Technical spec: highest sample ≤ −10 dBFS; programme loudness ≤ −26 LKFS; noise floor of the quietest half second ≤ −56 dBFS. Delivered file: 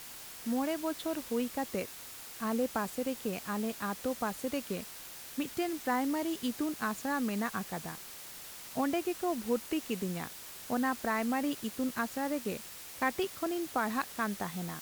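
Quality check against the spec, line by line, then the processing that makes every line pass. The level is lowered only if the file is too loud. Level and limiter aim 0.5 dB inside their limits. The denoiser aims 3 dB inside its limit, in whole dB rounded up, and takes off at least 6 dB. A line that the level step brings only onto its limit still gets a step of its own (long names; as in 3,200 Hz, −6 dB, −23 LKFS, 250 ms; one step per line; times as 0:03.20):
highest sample −17.0 dBFS: in spec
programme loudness −35.0 LKFS: in spec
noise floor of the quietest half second −47 dBFS: out of spec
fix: broadband denoise 12 dB, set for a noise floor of −47 dBFS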